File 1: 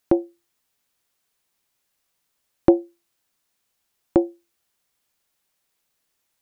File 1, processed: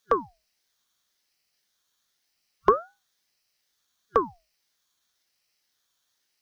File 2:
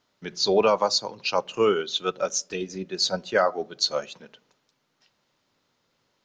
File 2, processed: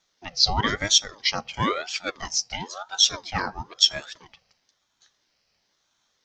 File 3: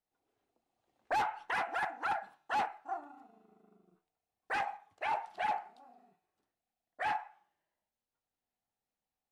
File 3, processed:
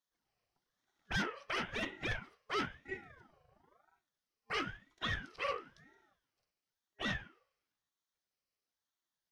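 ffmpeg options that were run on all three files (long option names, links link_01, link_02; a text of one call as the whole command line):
ffmpeg -i in.wav -af "superequalizer=8b=0.316:12b=2.51:14b=3.55,aeval=exprs='val(0)*sin(2*PI*720*n/s+720*0.6/0.99*sin(2*PI*0.99*n/s))':channel_layout=same,volume=-1dB" out.wav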